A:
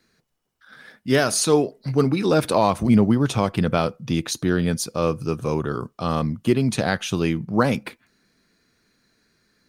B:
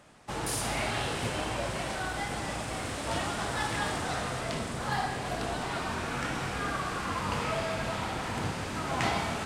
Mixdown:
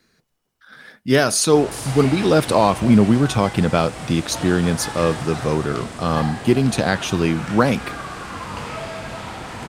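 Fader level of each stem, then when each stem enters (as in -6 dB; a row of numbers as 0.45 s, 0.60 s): +3.0 dB, +1.5 dB; 0.00 s, 1.25 s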